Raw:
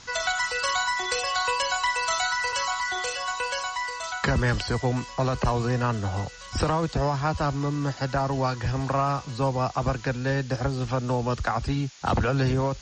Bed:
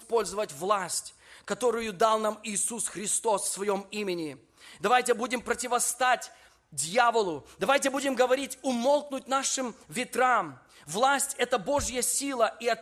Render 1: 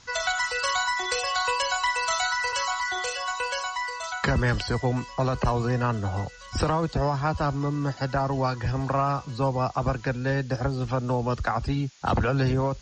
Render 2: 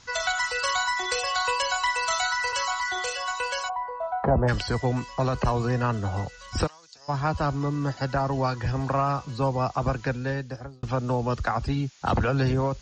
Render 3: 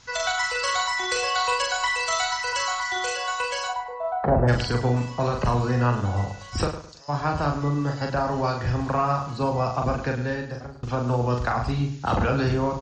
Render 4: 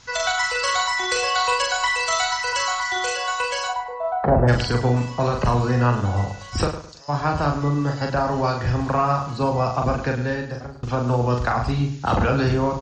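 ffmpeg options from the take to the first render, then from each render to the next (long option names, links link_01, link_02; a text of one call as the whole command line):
ffmpeg -i in.wav -af "afftdn=noise_reduction=6:noise_floor=-41" out.wav
ffmpeg -i in.wav -filter_complex "[0:a]asplit=3[link_01][link_02][link_03];[link_01]afade=type=out:start_time=3.68:duration=0.02[link_04];[link_02]lowpass=frequency=730:width_type=q:width=3.6,afade=type=in:start_time=3.68:duration=0.02,afade=type=out:start_time=4.47:duration=0.02[link_05];[link_03]afade=type=in:start_time=4.47:duration=0.02[link_06];[link_04][link_05][link_06]amix=inputs=3:normalize=0,asplit=3[link_07][link_08][link_09];[link_07]afade=type=out:start_time=6.66:duration=0.02[link_10];[link_08]bandpass=frequency=5800:width_type=q:width=2.9,afade=type=in:start_time=6.66:duration=0.02,afade=type=out:start_time=7.08:duration=0.02[link_11];[link_09]afade=type=in:start_time=7.08:duration=0.02[link_12];[link_10][link_11][link_12]amix=inputs=3:normalize=0,asplit=2[link_13][link_14];[link_13]atrim=end=10.83,asetpts=PTS-STARTPTS,afade=type=out:start_time=10.1:duration=0.73[link_15];[link_14]atrim=start=10.83,asetpts=PTS-STARTPTS,afade=type=in:duration=0.004:curve=hsin[link_16];[link_15][link_16]concat=n=2:v=0:a=1" out.wav
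ffmpeg -i in.wav -filter_complex "[0:a]asplit=2[link_01][link_02];[link_02]adelay=41,volume=-4dB[link_03];[link_01][link_03]amix=inputs=2:normalize=0,asplit=2[link_04][link_05];[link_05]adelay=106,lowpass=frequency=5000:poles=1,volume=-11dB,asplit=2[link_06][link_07];[link_07]adelay=106,lowpass=frequency=5000:poles=1,volume=0.31,asplit=2[link_08][link_09];[link_09]adelay=106,lowpass=frequency=5000:poles=1,volume=0.31[link_10];[link_04][link_06][link_08][link_10]amix=inputs=4:normalize=0" out.wav
ffmpeg -i in.wav -af "volume=3dB" out.wav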